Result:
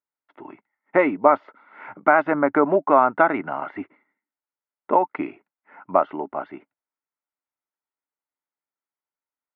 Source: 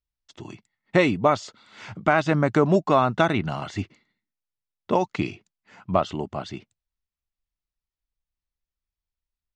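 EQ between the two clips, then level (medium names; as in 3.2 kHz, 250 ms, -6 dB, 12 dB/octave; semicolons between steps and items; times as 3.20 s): cabinet simulation 270–2200 Hz, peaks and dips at 280 Hz +10 dB, 400 Hz +4 dB, 580 Hz +5 dB, 900 Hz +6 dB, 1.4 kHz +8 dB, 2.1 kHz +7 dB; peaking EQ 870 Hz +6 dB 1.4 oct; -5.5 dB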